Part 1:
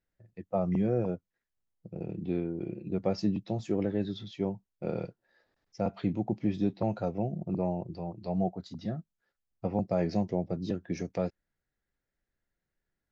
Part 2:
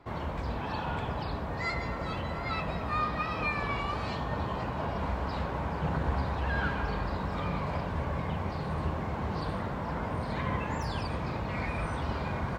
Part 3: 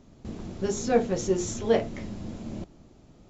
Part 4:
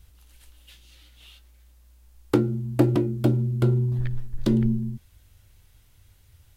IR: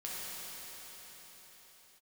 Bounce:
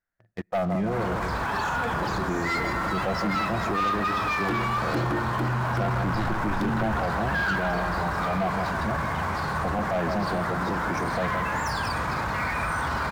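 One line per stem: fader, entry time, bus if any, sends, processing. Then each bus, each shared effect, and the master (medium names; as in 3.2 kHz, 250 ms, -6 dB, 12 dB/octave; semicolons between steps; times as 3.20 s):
-1.5 dB, 0.00 s, send -20 dB, echo send -9 dB, peaking EQ 690 Hz +5 dB 0.32 oct
-4.5 dB, 0.85 s, no send, no echo send, tone controls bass 0 dB, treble +12 dB
-17.5 dB, 0.90 s, no send, no echo send, none
-8.0 dB, 2.15 s, no send, no echo send, none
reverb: on, pre-delay 5 ms
echo: feedback delay 162 ms, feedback 35%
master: FFT filter 510 Hz 0 dB, 1.5 kHz +14 dB, 2.9 kHz 0 dB; waveshaping leveller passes 3; peak limiter -20.5 dBFS, peak gain reduction 10.5 dB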